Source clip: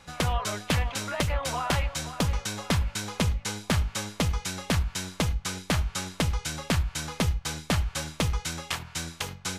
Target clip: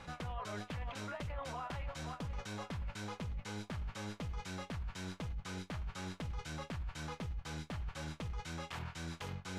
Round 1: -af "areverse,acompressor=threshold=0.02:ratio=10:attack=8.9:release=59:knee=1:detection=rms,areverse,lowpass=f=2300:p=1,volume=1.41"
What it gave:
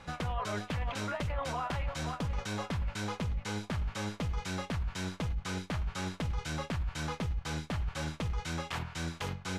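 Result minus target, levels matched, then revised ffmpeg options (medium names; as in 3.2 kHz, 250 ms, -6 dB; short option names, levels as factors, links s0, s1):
compression: peak gain reduction -7.5 dB
-af "areverse,acompressor=threshold=0.0075:ratio=10:attack=8.9:release=59:knee=1:detection=rms,areverse,lowpass=f=2300:p=1,volume=1.41"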